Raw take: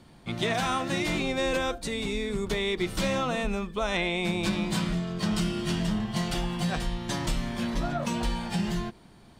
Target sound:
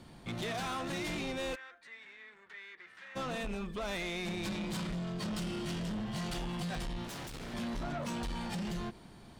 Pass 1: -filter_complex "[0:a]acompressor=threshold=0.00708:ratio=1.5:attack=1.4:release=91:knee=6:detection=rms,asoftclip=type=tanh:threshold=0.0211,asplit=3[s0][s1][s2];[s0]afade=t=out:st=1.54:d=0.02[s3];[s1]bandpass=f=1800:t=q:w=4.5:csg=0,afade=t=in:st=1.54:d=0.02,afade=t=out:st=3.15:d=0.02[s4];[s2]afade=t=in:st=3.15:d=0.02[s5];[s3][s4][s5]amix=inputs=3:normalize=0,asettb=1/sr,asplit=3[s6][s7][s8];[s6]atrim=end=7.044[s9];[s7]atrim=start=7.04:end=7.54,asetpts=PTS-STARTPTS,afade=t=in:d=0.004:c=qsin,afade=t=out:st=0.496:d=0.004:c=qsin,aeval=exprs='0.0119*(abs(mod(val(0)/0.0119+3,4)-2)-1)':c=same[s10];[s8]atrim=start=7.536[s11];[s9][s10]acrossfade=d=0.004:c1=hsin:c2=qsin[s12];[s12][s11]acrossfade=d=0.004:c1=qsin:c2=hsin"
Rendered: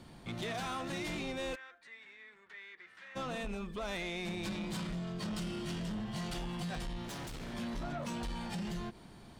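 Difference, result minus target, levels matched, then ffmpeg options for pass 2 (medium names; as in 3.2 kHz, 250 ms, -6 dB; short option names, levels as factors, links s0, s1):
compression: peak gain reduction +3.5 dB
-filter_complex "[0:a]acompressor=threshold=0.0224:ratio=1.5:attack=1.4:release=91:knee=6:detection=rms,asoftclip=type=tanh:threshold=0.0211,asplit=3[s0][s1][s2];[s0]afade=t=out:st=1.54:d=0.02[s3];[s1]bandpass=f=1800:t=q:w=4.5:csg=0,afade=t=in:st=1.54:d=0.02,afade=t=out:st=3.15:d=0.02[s4];[s2]afade=t=in:st=3.15:d=0.02[s5];[s3][s4][s5]amix=inputs=3:normalize=0,asettb=1/sr,asplit=3[s6][s7][s8];[s6]atrim=end=7.044[s9];[s7]atrim=start=7.04:end=7.54,asetpts=PTS-STARTPTS,afade=t=in:d=0.004:c=qsin,afade=t=out:st=0.496:d=0.004:c=qsin,aeval=exprs='0.0119*(abs(mod(val(0)/0.0119+3,4)-2)-1)':c=same[s10];[s8]atrim=start=7.536[s11];[s9][s10]acrossfade=d=0.004:c1=hsin:c2=qsin[s12];[s12][s11]acrossfade=d=0.004:c1=qsin:c2=hsin"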